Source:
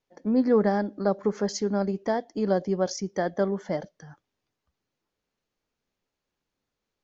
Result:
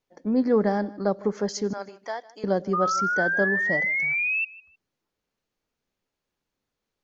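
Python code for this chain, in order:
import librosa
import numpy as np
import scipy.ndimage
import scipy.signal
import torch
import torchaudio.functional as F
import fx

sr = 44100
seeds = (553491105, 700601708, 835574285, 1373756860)

y = fx.highpass(x, sr, hz=870.0, slope=12, at=(1.73, 2.44))
y = fx.spec_paint(y, sr, seeds[0], shape='rise', start_s=2.73, length_s=1.72, low_hz=1200.0, high_hz=2700.0, level_db=-25.0)
y = fx.echo_feedback(y, sr, ms=155, feedback_pct=23, wet_db=-20.5)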